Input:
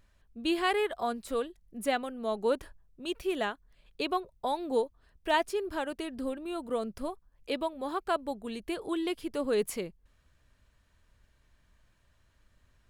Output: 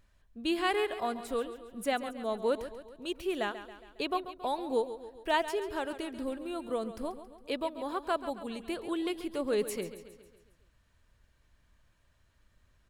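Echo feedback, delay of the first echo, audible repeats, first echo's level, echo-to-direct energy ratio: 54%, 0.137 s, 5, -12.5 dB, -11.0 dB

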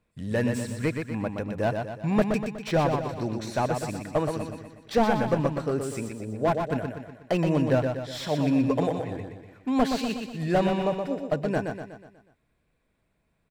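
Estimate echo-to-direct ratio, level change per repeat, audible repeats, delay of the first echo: -4.5 dB, -6.0 dB, 5, 0.122 s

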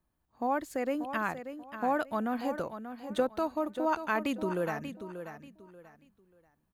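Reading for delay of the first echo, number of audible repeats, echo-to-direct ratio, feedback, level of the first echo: 0.586 s, 3, -9.5 dB, 27%, -10.0 dB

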